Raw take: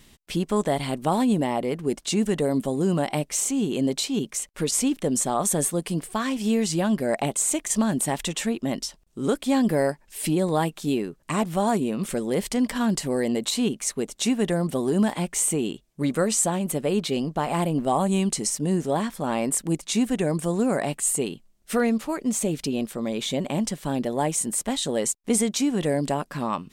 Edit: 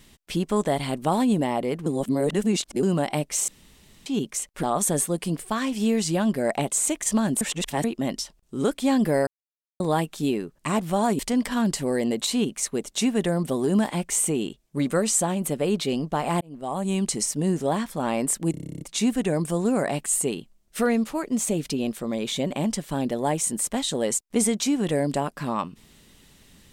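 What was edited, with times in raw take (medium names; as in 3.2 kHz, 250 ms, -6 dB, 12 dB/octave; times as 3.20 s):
1.86–2.83 s: reverse
3.48–4.06 s: room tone
4.63–5.27 s: delete
8.05–8.48 s: reverse
9.91–10.44 s: mute
11.83–12.43 s: delete
17.65–18.34 s: fade in linear
19.75 s: stutter 0.03 s, 11 plays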